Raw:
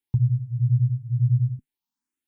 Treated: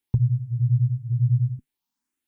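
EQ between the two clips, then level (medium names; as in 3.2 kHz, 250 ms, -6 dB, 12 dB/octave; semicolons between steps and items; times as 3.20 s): dynamic bell 150 Hz, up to -5 dB, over -29 dBFS, Q 1.1; +4.0 dB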